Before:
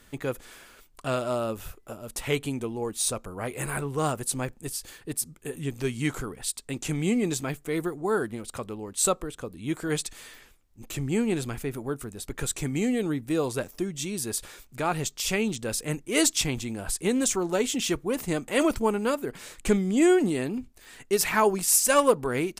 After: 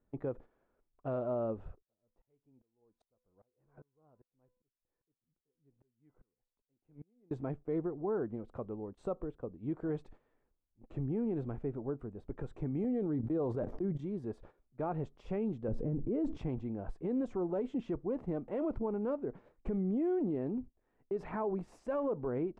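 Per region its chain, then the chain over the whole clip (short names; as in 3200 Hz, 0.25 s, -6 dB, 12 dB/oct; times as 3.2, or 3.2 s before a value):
1.82–7.31 resonator 500 Hz, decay 0.52 s, mix 70% + dB-ramp tremolo swelling 2.5 Hz, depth 28 dB
12.84–14.25 notch 2600 Hz + gate -36 dBFS, range -20 dB + sustainer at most 30 dB/s
15.68–16.38 tilt shelf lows +9.5 dB, about 630 Hz + fast leveller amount 50%
whole clip: gate -41 dBFS, range -14 dB; Chebyshev low-pass 680 Hz, order 2; limiter -22.5 dBFS; gain -4.5 dB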